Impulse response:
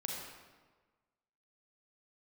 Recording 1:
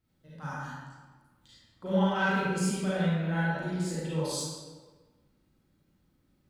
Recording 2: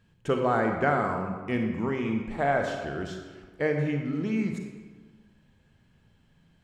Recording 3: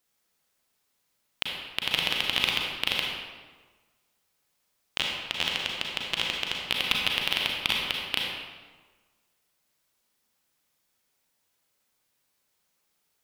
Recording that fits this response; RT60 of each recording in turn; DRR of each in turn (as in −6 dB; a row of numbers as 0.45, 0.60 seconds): 3; 1.4, 1.4, 1.4 seconds; −10.0, 3.5, −1.5 decibels